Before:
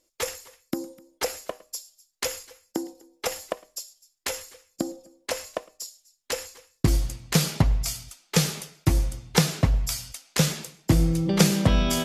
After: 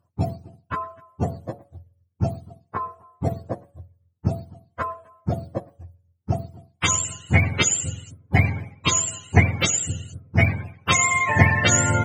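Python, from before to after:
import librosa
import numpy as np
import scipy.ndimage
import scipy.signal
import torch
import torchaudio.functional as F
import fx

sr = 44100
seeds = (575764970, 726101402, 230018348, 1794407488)

y = fx.octave_mirror(x, sr, pivot_hz=590.0)
y = fx.cheby_harmonics(y, sr, harmonics=(7,), levels_db=(-45,), full_scale_db=-7.5)
y = y * 10.0 ** (6.0 / 20.0)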